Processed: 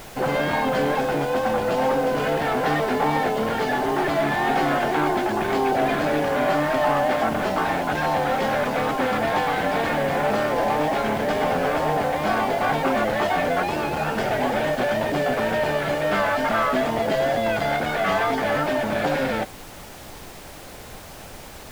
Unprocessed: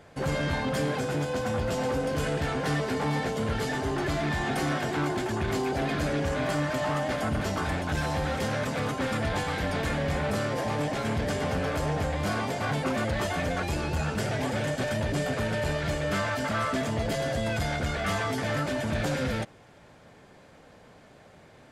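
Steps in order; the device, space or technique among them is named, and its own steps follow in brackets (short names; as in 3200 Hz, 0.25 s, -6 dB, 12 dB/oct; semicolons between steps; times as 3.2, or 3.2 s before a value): horn gramophone (BPF 220–3500 Hz; bell 780 Hz +6 dB 0.56 oct; wow and flutter; pink noise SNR 18 dB); gain +6.5 dB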